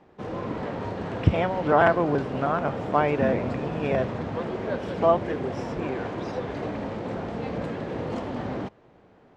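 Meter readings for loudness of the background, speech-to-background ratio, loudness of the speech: −32.0 LKFS, 6.5 dB, −25.5 LKFS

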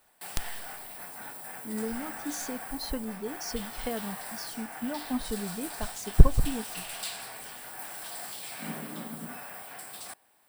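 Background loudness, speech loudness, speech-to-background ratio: −38.5 LKFS, −33.0 LKFS, 5.5 dB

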